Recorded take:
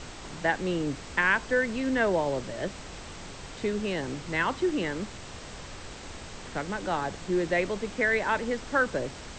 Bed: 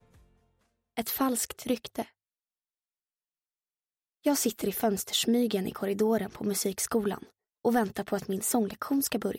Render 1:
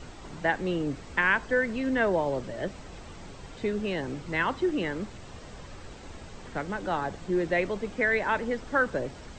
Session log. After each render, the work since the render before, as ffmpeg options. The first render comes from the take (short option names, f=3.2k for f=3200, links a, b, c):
-af "afftdn=nr=8:nf=-43"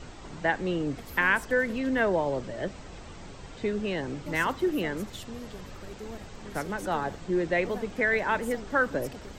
-filter_complex "[1:a]volume=-16dB[a];[0:a][a]amix=inputs=2:normalize=0"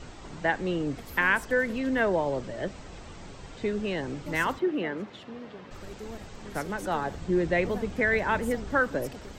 -filter_complex "[0:a]asplit=3[a][b][c];[a]afade=t=out:st=4.58:d=0.02[d];[b]highpass=180,lowpass=2.9k,afade=t=in:st=4.58:d=0.02,afade=t=out:st=5.7:d=0.02[e];[c]afade=t=in:st=5.7:d=0.02[f];[d][e][f]amix=inputs=3:normalize=0,asettb=1/sr,asplit=3[g][h][i];[g]atrim=end=7.154[j];[h]atrim=start=7.15:end=8.8,asetpts=PTS-STARTPTS,afade=t=in:d=0.004:c=qsin,afade=t=out:st=1.646:d=0.004:c=qsin,equalizer=f=71:w=0.52:g=9[k];[i]atrim=start=8.796[l];[j][k]acrossfade=d=0.004:c1=hsin:c2=qsin[m];[m][l]acrossfade=d=0.004:c1=qsin:c2=hsin"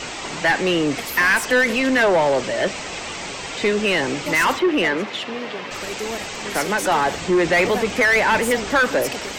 -filter_complex "[0:a]aexciter=amount=2.4:drive=5.1:freq=2.1k,asplit=2[a][b];[b]highpass=f=720:p=1,volume=25dB,asoftclip=type=tanh:threshold=-7.5dB[c];[a][c]amix=inputs=2:normalize=0,lowpass=f=2.5k:p=1,volume=-6dB"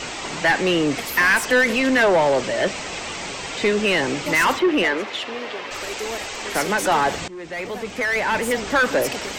-filter_complex "[0:a]asettb=1/sr,asplit=3[a][b][c];[a]atrim=end=4.834[d];[b]atrim=start=4.83:end=6.55,asetpts=PTS-STARTPTS,afade=t=in:d=0.004:c=qsin,afade=t=out:st=1.716:d=0.004:c=qsin,equalizer=f=170:t=o:w=0.77:g=-13[e];[c]atrim=start=6.546[f];[d][e]acrossfade=d=0.004:c1=hsin:c2=qsin[g];[g][f]acrossfade=d=0.004:c1=qsin:c2=hsin,asplit=2[h][i];[h]atrim=end=7.28,asetpts=PTS-STARTPTS,afade=t=out:st=7.276:d=0.004:c=hsin:silence=0.0749894[j];[i]atrim=start=7.28,asetpts=PTS-STARTPTS,afade=t=in:d=1.71:silence=0.0749894[k];[j][k]concat=n=2:v=0:a=1"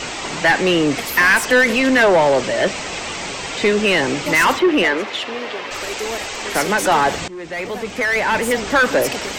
-af "volume=3.5dB"